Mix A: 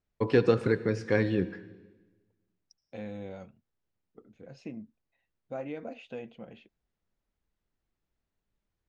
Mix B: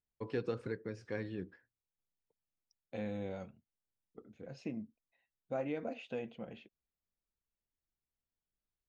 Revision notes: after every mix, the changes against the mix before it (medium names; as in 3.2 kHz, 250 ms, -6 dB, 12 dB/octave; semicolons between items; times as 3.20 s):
first voice -11.5 dB; reverb: off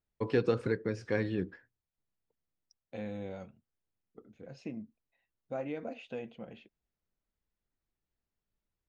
first voice +8.5 dB